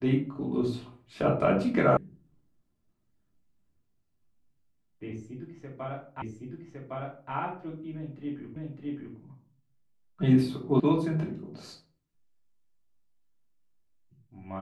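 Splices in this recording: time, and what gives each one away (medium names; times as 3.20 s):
1.97 s: sound stops dead
6.22 s: repeat of the last 1.11 s
8.56 s: repeat of the last 0.61 s
10.80 s: sound stops dead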